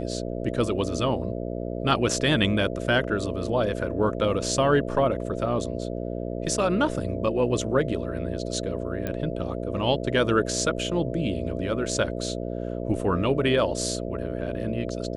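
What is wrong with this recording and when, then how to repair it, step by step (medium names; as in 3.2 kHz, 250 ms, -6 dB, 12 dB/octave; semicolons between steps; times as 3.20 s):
buzz 60 Hz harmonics 11 -31 dBFS
9.07 s: pop -16 dBFS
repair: de-click; de-hum 60 Hz, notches 11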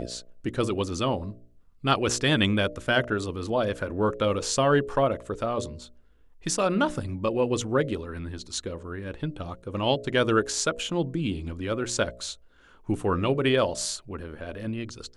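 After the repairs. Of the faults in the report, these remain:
nothing left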